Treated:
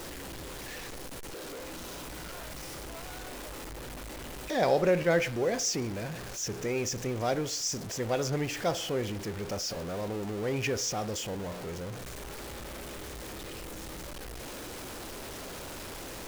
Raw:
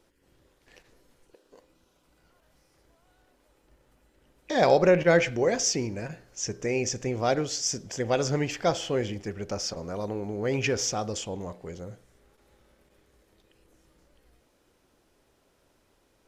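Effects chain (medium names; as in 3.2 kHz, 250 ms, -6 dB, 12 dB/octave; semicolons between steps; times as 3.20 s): jump at every zero crossing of -29.5 dBFS; trim -6 dB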